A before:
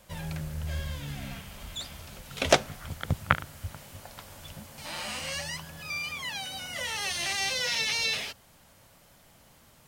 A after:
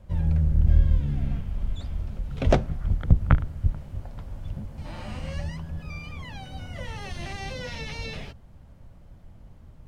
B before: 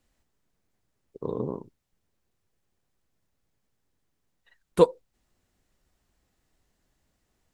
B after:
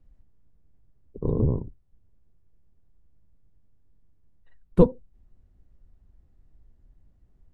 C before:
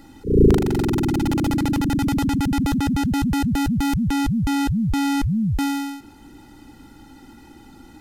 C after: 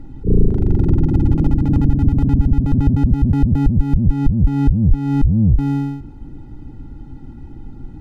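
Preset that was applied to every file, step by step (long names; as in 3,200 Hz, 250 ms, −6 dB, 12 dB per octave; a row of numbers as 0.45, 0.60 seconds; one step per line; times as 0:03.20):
sub-octave generator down 1 octave, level −3 dB
spectral tilt −4.5 dB per octave
downward compressor 4 to 1, threshold −6 dBFS
level −3.5 dB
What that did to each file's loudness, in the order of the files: +2.5, +2.0, +4.0 LU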